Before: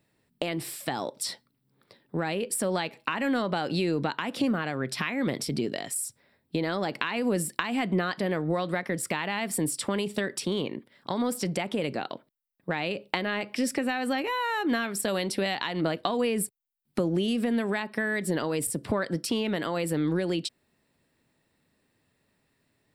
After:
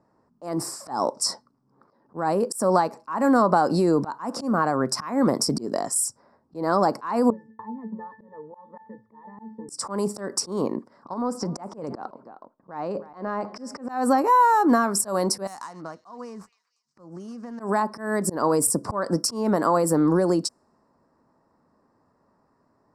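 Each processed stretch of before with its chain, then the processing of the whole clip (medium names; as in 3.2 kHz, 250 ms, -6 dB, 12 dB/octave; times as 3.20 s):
7.30–9.69 s: distance through air 300 m + pitch-class resonator A, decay 0.25 s
11.13–13.89 s: compression 12:1, threshold -29 dBFS + treble shelf 5.1 kHz -11 dB + delay 312 ms -18.5 dB
15.47–17.60 s: median filter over 9 samples + amplifier tone stack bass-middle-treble 5-5-5 + repeats whose band climbs or falls 237 ms, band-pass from 2.8 kHz, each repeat 0.7 oct, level -11 dB
whole clip: level-controlled noise filter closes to 2.8 kHz, open at -26 dBFS; FFT filter 140 Hz 0 dB, 220 Hz +6 dB, 400 Hz +5 dB, 730 Hz +9 dB, 1.1 kHz +14 dB, 2.3 kHz -14 dB, 3.4 kHz -21 dB, 5.1 kHz +9 dB, 8.1 kHz +8 dB, 12 kHz +5 dB; slow attack 175 ms; trim +2 dB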